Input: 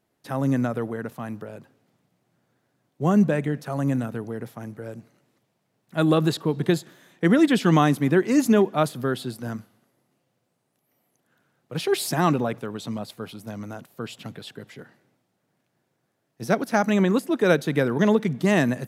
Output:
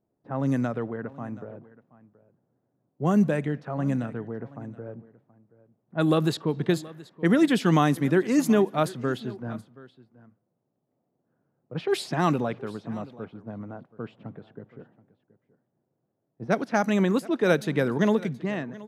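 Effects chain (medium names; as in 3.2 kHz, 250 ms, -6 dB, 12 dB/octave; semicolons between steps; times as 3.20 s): fade out at the end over 0.82 s; level-controlled noise filter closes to 680 Hz, open at -16.5 dBFS; delay 726 ms -20 dB; trim -2.5 dB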